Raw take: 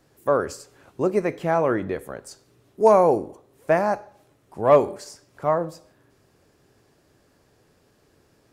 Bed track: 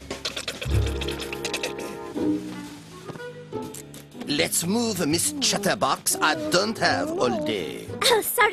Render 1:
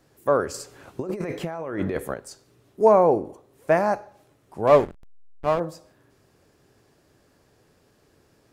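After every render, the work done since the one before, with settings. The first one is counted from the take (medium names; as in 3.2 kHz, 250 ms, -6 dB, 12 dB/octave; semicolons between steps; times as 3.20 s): 0.54–2.14 s: compressor with a negative ratio -29 dBFS; 2.84–3.24 s: treble shelf 2.6 kHz -> 4.2 kHz -11.5 dB; 4.67–5.60 s: hysteresis with a dead band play -22.5 dBFS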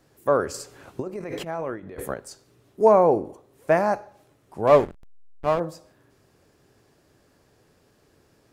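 1.06–2.06 s: compressor with a negative ratio -32 dBFS, ratio -0.5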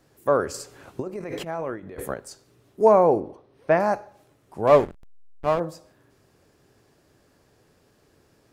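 3.20–3.80 s: Savitzky-Golay filter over 15 samples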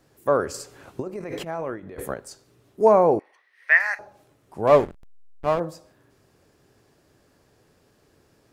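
3.19–3.99 s: resonant high-pass 1.9 kHz, resonance Q 12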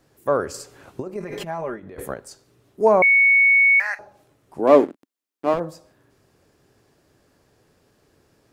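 1.15–1.79 s: comb 5 ms; 3.02–3.80 s: bleep 2.22 kHz -11.5 dBFS; 4.59–5.54 s: resonant high-pass 280 Hz, resonance Q 3.3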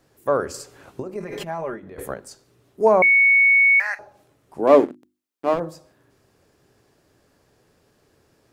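hum notches 50/100/150/200/250/300/350 Hz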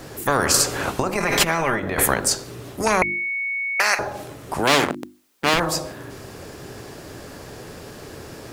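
spectrum-flattening compressor 4:1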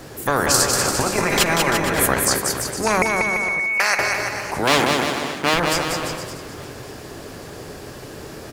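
bouncing-ball echo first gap 190 ms, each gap 0.8×, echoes 5; modulated delay 571 ms, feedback 36%, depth 217 cents, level -18 dB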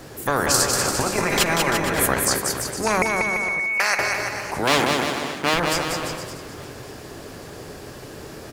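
trim -2 dB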